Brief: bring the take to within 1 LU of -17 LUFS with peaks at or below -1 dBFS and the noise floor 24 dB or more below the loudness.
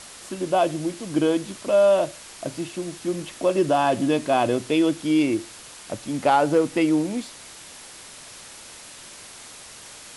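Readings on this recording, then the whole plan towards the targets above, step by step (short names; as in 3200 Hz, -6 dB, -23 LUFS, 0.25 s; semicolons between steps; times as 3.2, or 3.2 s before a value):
noise floor -43 dBFS; noise floor target -47 dBFS; loudness -22.5 LUFS; peak -8.0 dBFS; loudness target -17.0 LUFS
-> noise print and reduce 6 dB; gain +5.5 dB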